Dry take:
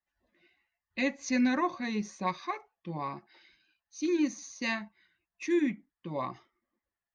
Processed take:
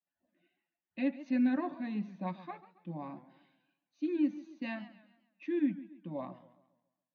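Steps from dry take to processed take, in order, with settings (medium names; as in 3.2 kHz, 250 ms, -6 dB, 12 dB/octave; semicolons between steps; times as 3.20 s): cabinet simulation 150–3100 Hz, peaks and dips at 180 Hz +8 dB, 280 Hz +8 dB, 420 Hz -9 dB, 620 Hz +5 dB, 1.1 kHz -8 dB, 2.1 kHz -9 dB; modulated delay 138 ms, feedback 41%, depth 147 cents, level -16 dB; trim -6 dB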